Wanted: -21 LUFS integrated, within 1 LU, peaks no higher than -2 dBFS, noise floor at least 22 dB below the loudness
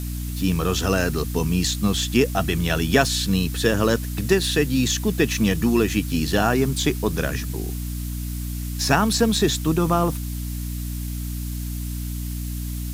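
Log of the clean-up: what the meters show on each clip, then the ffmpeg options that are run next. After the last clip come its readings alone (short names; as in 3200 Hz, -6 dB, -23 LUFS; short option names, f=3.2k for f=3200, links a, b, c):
hum 60 Hz; harmonics up to 300 Hz; hum level -26 dBFS; noise floor -29 dBFS; noise floor target -45 dBFS; loudness -22.5 LUFS; peak -3.0 dBFS; loudness target -21.0 LUFS
-> -af "bandreject=f=60:t=h:w=6,bandreject=f=120:t=h:w=6,bandreject=f=180:t=h:w=6,bandreject=f=240:t=h:w=6,bandreject=f=300:t=h:w=6"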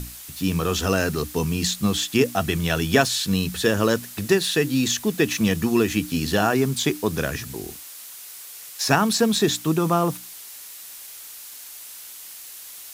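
hum none; noise floor -40 dBFS; noise floor target -44 dBFS
-> -af "afftdn=nr=6:nf=-40"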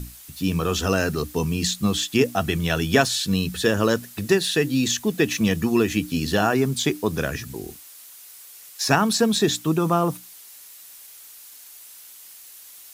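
noise floor -45 dBFS; loudness -22.0 LUFS; peak -3.5 dBFS; loudness target -21.0 LUFS
-> -af "volume=1dB"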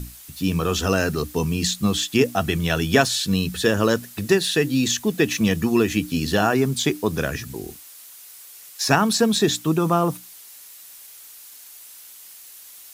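loudness -21.0 LUFS; peak -2.5 dBFS; noise floor -44 dBFS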